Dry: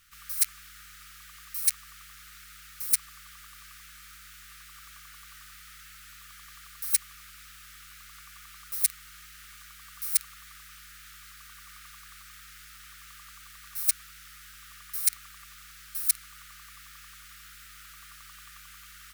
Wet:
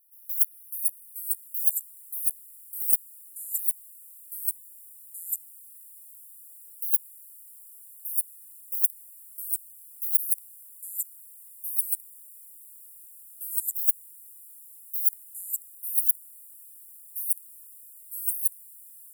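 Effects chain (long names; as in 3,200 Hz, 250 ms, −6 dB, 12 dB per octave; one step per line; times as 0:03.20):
linear-phase brick-wall band-stop 320–9,900 Hz
first-order pre-emphasis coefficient 0.97
delay with pitch and tempo change per echo 393 ms, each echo −2 semitones, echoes 3
level −1 dB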